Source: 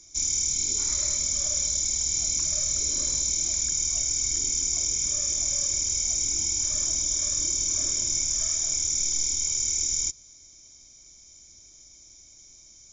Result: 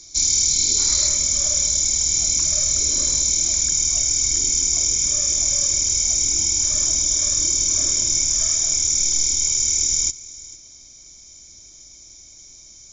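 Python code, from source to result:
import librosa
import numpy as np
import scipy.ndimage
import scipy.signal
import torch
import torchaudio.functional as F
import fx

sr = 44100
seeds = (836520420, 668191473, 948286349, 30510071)

y = fx.peak_eq(x, sr, hz=4300.0, db=fx.steps((0.0, 14.5), (1.08, 3.5)), octaves=0.29)
y = y + 10.0 ** (-19.5 / 20.0) * np.pad(y, (int(453 * sr / 1000.0), 0))[:len(y)]
y = F.gain(torch.from_numpy(y), 6.5).numpy()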